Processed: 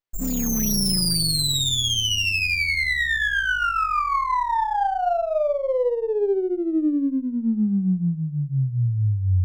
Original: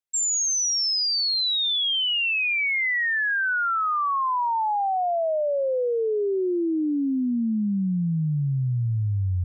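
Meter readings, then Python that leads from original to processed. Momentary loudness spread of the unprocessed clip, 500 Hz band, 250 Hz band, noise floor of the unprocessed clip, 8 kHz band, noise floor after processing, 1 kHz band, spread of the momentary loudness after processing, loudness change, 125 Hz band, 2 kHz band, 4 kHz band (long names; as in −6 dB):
5 LU, +1.5 dB, +2.5 dB, −24 dBFS, can't be measured, −30 dBFS, +1.5 dB, 5 LU, +1.0 dB, +2.5 dB, +1.0 dB, 0.0 dB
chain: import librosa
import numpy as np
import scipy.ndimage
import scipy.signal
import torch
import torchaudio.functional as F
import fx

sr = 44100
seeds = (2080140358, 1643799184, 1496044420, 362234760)

y = fx.room_early_taps(x, sr, ms=(10, 53, 75), db=(-8.5, -13.5, -5.5))
y = fx.dynamic_eq(y, sr, hz=5600.0, q=1.3, threshold_db=-34.0, ratio=4.0, max_db=6)
y = fx.running_max(y, sr, window=5)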